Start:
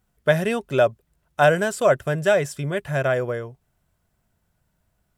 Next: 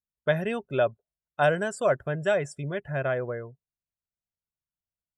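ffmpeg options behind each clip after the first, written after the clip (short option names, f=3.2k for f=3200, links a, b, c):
-af "afftdn=nr=26:nf=-38,volume=-6dB"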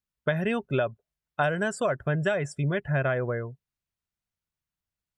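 -af "highshelf=f=4.3k:g=-8,acompressor=threshold=-26dB:ratio=6,equalizer=f=550:t=o:w=1.7:g=-5,volume=7.5dB"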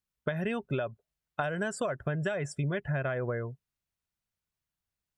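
-af "acompressor=threshold=-28dB:ratio=6"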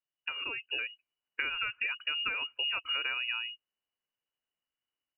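-af "lowpass=f=2.6k:t=q:w=0.5098,lowpass=f=2.6k:t=q:w=0.6013,lowpass=f=2.6k:t=q:w=0.9,lowpass=f=2.6k:t=q:w=2.563,afreqshift=-3000,lowshelf=f=400:g=8,dynaudnorm=f=510:g=3:m=4dB,volume=-6.5dB"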